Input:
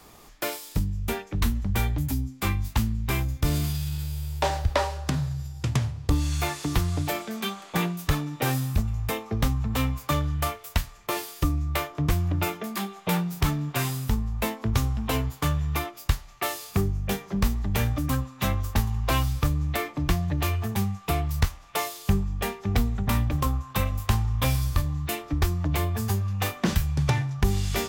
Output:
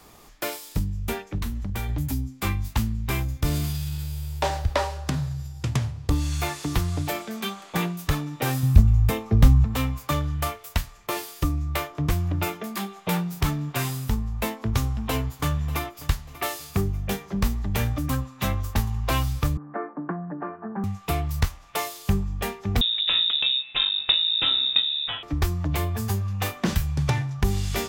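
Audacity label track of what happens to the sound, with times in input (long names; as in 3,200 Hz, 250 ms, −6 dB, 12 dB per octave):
1.380000	1.890000	downward compressor 3 to 1, threshold −26 dBFS
8.630000	9.650000	low-shelf EQ 230 Hz +12 dB
14.800000	15.890000	delay throw 590 ms, feedback 35%, level −17 dB
19.570000	20.840000	Chebyshev band-pass filter 180–1,600 Hz, order 4
22.810000	25.230000	voice inversion scrambler carrier 3,700 Hz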